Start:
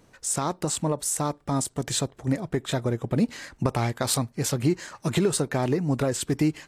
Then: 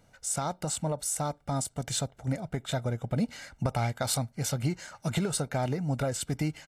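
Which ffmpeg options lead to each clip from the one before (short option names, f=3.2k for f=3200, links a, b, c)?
-af "aecho=1:1:1.4:0.57,volume=-5.5dB"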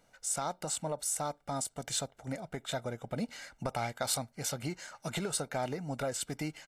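-af "equalizer=f=84:w=0.53:g=-12,volume=-2dB"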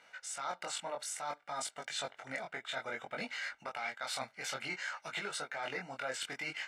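-af "bandpass=f=2k:t=q:w=1.3:csg=0,areverse,acompressor=threshold=-51dB:ratio=6,areverse,flanger=delay=19.5:depth=3.8:speed=0.58,volume=17.5dB"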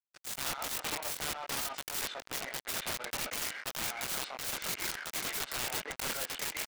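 -filter_complex "[0:a]acrusher=bits=5:mix=0:aa=0.5,asplit=2[a][b];[b]adelay=130,highpass=300,lowpass=3.4k,asoftclip=type=hard:threshold=-33dB,volume=-9dB[c];[a][c]amix=inputs=2:normalize=0,aeval=exprs='(mod(47.3*val(0)+1,2)-1)/47.3':c=same,volume=7.5dB"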